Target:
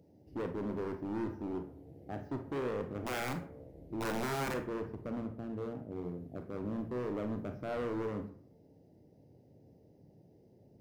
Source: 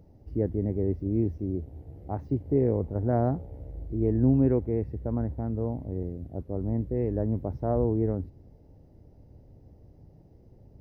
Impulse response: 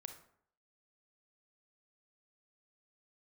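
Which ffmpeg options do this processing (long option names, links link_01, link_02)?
-filter_complex "[0:a]highpass=180,equalizer=frequency=1200:width_type=o:width=0.72:gain=-11.5,asettb=1/sr,asplit=3[link_01][link_02][link_03];[link_01]atrim=end=3.014[link_04];[link_02]atrim=start=3.01:end=4.54,asetpts=PTS-STARTPTS,afade=type=in:duration=0.004:curve=qsin,afade=type=out:start_time=1.526:duration=0.004:curve=qsin,aeval=exprs='(mod(13.3*val(0)+1,2)-1)/13.3':channel_layout=same[link_05];[link_03]atrim=start=4.536[link_06];[link_04][link_05]acrossfade=duration=0.004:curve1=hsin:curve2=qsin[link_07];[link_07][link_06]acrossfade=duration=0.004:curve1=qsin:curve2=hsin,asettb=1/sr,asplit=3[link_08][link_09][link_10];[link_08]atrim=end=5.204[link_11];[link_09]atrim=start=5.2:end=6.04,asetpts=PTS-STARTPTS,afade=type=in:duration=0.004:curve=qsin,afade=type=out:start_time=0.836:duration=0.004:curve=qsin,aeval=exprs='0.0794*(cos(1*acos(clip(val(0)/0.0794,-1,1)))-cos(1*PI/2))+0.00794*(cos(3*acos(clip(val(0)/0.0794,-1,1)))-cos(3*PI/2))':channel_layout=same[link_12];[link_10]atrim=start=6.036[link_13];[link_11][link_12]acrossfade=duration=0.004:curve1=hsin:curve2=qsin[link_14];[link_14][link_13]acrossfade=duration=0.004:curve1=qsin:curve2=hsin,volume=31.5dB,asoftclip=hard,volume=-31.5dB[link_15];[1:a]atrim=start_sample=2205,asetrate=57330,aresample=44100[link_16];[link_15][link_16]afir=irnorm=-1:irlink=0,volume=5.5dB"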